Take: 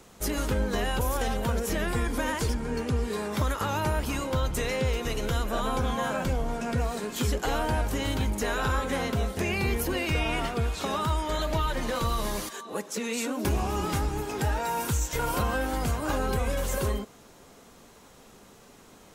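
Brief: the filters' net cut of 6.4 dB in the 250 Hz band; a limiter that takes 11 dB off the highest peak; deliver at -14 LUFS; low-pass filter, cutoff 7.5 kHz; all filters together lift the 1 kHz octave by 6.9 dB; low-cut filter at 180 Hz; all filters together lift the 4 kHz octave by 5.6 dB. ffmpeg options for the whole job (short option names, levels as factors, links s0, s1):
-af "highpass=180,lowpass=7500,equalizer=f=250:t=o:g=-7,equalizer=f=1000:t=o:g=8.5,equalizer=f=4000:t=o:g=7,volume=7.5,alimiter=limit=0.531:level=0:latency=1"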